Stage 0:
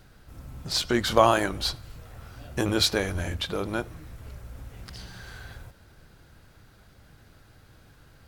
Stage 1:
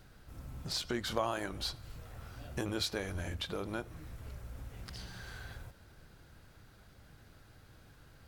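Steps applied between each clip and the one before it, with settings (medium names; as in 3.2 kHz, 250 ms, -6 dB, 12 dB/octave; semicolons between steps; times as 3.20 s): compression 2:1, threshold -34 dBFS, peak gain reduction 12 dB; trim -4 dB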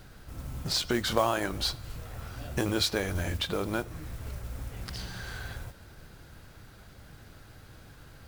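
modulation noise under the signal 20 dB; trim +7.5 dB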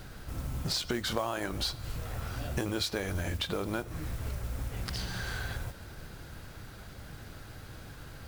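compression 3:1, threshold -36 dBFS, peak gain reduction 12.5 dB; trim +4.5 dB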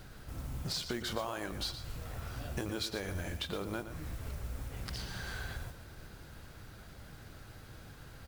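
delay 117 ms -11 dB; trim -5 dB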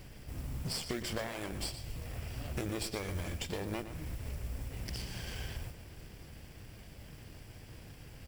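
comb filter that takes the minimum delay 0.38 ms; trim +1 dB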